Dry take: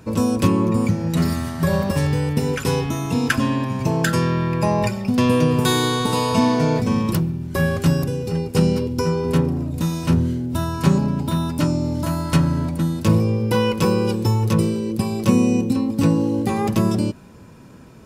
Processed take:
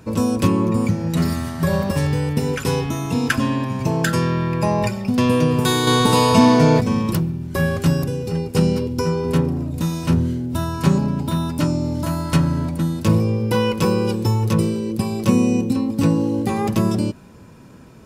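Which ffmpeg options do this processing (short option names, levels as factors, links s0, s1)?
-filter_complex "[0:a]asettb=1/sr,asplit=3[s0][s1][s2];[s0]atrim=end=5.874[s3];[s1]atrim=start=5.87:end=6.81,asetpts=PTS-STARTPTS,afade=t=in:d=0.004:c=qsin,afade=t=out:st=0.936:d=0.004:c=qsin,acontrast=41[s4];[s2]atrim=start=6.806[s5];[s3][s4]acrossfade=d=0.004:c1=hsin:c2=qsin[s6];[s6][s5]acrossfade=d=0.004:c1=qsin:c2=hsin"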